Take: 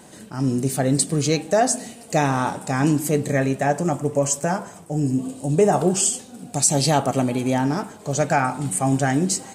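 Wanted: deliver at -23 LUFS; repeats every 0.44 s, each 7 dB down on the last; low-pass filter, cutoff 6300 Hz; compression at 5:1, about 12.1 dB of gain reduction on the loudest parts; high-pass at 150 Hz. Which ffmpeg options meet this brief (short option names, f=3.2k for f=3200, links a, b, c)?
-af "highpass=150,lowpass=6.3k,acompressor=threshold=-27dB:ratio=5,aecho=1:1:440|880|1320|1760|2200:0.447|0.201|0.0905|0.0407|0.0183,volume=7.5dB"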